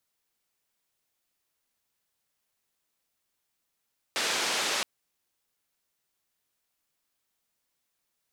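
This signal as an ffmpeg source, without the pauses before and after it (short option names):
-f lavfi -i "anoisesrc=c=white:d=0.67:r=44100:seed=1,highpass=f=290,lowpass=f=5400,volume=-18.1dB"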